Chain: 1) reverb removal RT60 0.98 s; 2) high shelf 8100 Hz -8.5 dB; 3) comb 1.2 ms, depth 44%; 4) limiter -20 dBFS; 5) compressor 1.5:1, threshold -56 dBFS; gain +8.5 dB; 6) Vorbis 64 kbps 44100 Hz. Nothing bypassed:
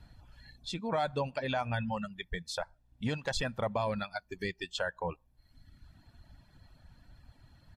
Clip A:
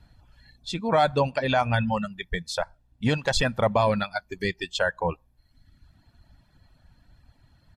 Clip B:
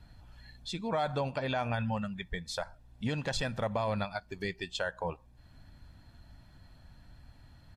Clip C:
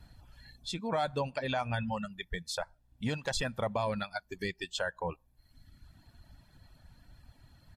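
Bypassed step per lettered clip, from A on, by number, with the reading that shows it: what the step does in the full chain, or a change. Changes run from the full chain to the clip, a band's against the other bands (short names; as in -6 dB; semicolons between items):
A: 5, mean gain reduction 6.5 dB; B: 1, 125 Hz band +2.0 dB; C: 2, 8 kHz band +3.0 dB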